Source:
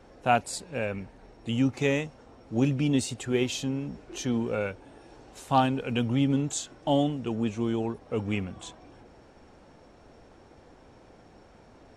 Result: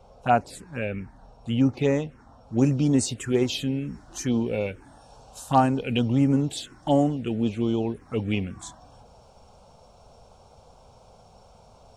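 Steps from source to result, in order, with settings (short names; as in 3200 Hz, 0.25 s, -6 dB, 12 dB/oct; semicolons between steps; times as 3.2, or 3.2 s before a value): high shelf 3700 Hz -5.5 dB, from 2.58 s +4 dB; envelope phaser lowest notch 290 Hz, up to 3400 Hz, full sweep at -20.5 dBFS; gain +4 dB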